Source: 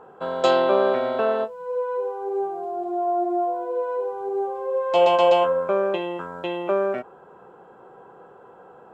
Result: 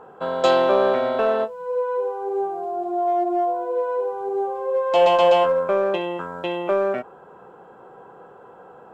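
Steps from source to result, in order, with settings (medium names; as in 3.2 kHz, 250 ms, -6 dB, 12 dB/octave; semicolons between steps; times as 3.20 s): peaking EQ 370 Hz -2.5 dB 0.2 oct; in parallel at -9.5 dB: overload inside the chain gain 20 dB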